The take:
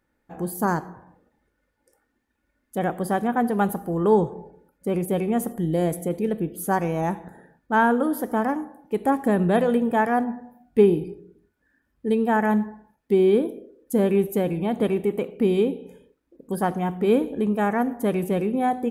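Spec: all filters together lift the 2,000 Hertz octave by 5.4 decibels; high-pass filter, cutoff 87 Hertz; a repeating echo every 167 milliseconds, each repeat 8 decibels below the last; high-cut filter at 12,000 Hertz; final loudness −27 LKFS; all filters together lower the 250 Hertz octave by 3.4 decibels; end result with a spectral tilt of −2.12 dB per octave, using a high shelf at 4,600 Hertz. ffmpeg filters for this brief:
ffmpeg -i in.wav -af "highpass=87,lowpass=12000,equalizer=frequency=250:width_type=o:gain=-4.5,equalizer=frequency=2000:width_type=o:gain=8.5,highshelf=frequency=4600:gain=-7.5,aecho=1:1:167|334|501|668|835:0.398|0.159|0.0637|0.0255|0.0102,volume=-3dB" out.wav

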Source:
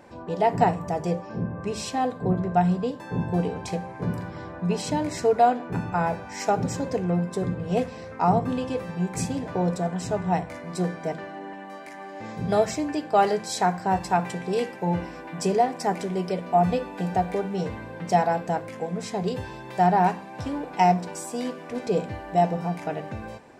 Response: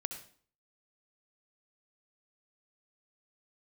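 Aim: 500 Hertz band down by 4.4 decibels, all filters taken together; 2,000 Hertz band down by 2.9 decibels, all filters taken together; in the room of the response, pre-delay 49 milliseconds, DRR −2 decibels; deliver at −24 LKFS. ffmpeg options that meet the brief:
-filter_complex "[0:a]equalizer=frequency=500:width_type=o:gain=-6,equalizer=frequency=2000:width_type=o:gain=-3.5,asplit=2[link_01][link_02];[1:a]atrim=start_sample=2205,adelay=49[link_03];[link_02][link_03]afir=irnorm=-1:irlink=0,volume=2dB[link_04];[link_01][link_04]amix=inputs=2:normalize=0,volume=0.5dB"

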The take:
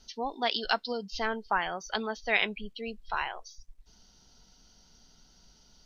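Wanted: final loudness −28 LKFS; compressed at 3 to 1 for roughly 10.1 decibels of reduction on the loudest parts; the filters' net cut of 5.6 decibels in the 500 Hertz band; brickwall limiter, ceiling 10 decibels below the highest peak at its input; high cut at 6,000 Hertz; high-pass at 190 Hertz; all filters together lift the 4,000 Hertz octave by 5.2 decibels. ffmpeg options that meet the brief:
ffmpeg -i in.wav -af "highpass=190,lowpass=6000,equalizer=frequency=500:width_type=o:gain=-7.5,equalizer=frequency=4000:width_type=o:gain=7.5,acompressor=threshold=-34dB:ratio=3,volume=12dB,alimiter=limit=-14.5dB:level=0:latency=1" out.wav

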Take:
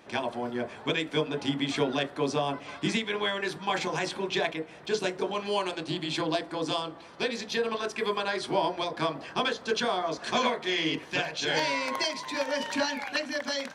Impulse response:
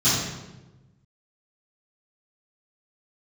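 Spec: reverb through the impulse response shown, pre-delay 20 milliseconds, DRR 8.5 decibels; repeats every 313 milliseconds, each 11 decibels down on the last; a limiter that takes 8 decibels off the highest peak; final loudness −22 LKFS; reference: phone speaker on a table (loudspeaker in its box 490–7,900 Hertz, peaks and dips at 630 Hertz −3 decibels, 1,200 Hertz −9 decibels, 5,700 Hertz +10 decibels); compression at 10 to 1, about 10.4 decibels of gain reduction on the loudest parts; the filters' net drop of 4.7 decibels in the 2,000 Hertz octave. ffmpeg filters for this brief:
-filter_complex "[0:a]equalizer=frequency=2000:width_type=o:gain=-5,acompressor=threshold=-33dB:ratio=10,alimiter=level_in=4.5dB:limit=-24dB:level=0:latency=1,volume=-4.5dB,aecho=1:1:313|626|939:0.282|0.0789|0.0221,asplit=2[link_01][link_02];[1:a]atrim=start_sample=2205,adelay=20[link_03];[link_02][link_03]afir=irnorm=-1:irlink=0,volume=-25dB[link_04];[link_01][link_04]amix=inputs=2:normalize=0,highpass=frequency=490:width=0.5412,highpass=frequency=490:width=1.3066,equalizer=frequency=630:width_type=q:width=4:gain=-3,equalizer=frequency=1200:width_type=q:width=4:gain=-9,equalizer=frequency=5700:width_type=q:width=4:gain=10,lowpass=frequency=7900:width=0.5412,lowpass=frequency=7900:width=1.3066,volume=17.5dB"

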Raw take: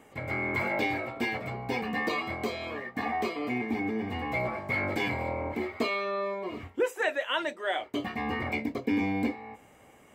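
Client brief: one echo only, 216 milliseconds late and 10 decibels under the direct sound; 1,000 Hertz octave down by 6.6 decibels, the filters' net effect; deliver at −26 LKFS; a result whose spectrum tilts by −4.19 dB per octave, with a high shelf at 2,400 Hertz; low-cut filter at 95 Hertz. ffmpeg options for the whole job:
ffmpeg -i in.wav -af "highpass=95,equalizer=frequency=1000:width_type=o:gain=-8.5,highshelf=frequency=2400:gain=-5.5,aecho=1:1:216:0.316,volume=7.5dB" out.wav

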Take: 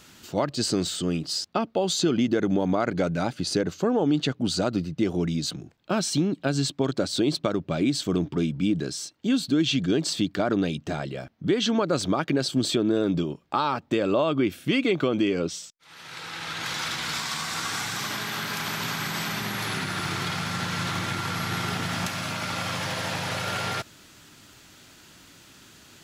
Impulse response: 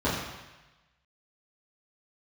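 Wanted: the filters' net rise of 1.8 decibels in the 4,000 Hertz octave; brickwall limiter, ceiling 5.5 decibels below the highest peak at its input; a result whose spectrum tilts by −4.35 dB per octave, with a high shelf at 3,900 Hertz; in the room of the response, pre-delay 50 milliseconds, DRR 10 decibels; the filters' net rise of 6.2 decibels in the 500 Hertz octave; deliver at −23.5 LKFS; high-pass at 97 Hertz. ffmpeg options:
-filter_complex "[0:a]highpass=97,equalizer=frequency=500:width_type=o:gain=8,highshelf=frequency=3900:gain=-7.5,equalizer=frequency=4000:width_type=o:gain=6.5,alimiter=limit=-12.5dB:level=0:latency=1,asplit=2[link_01][link_02];[1:a]atrim=start_sample=2205,adelay=50[link_03];[link_02][link_03]afir=irnorm=-1:irlink=0,volume=-23.5dB[link_04];[link_01][link_04]amix=inputs=2:normalize=0,volume=0.5dB"

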